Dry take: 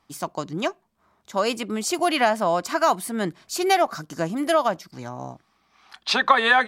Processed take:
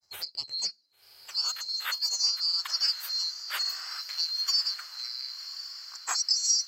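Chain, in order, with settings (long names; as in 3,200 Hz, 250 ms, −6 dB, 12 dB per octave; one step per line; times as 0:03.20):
neighbouring bands swapped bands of 4,000 Hz
high-pass filter sweep 64 Hz → 1,300 Hz, 0:00.27–0:01.45
in parallel at +2 dB: downward compressor, threshold −31 dBFS, peak gain reduction 19 dB
on the sum: granular cloud 100 ms, grains 20 per second, spray 15 ms, pitch spread up and down by 0 semitones
healed spectral selection 0:03.67–0:03.93, 240–11,000 Hz
on a send: feedback delay with all-pass diffusion 1,084 ms, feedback 50%, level −12 dB
on the sum: level −8.5 dB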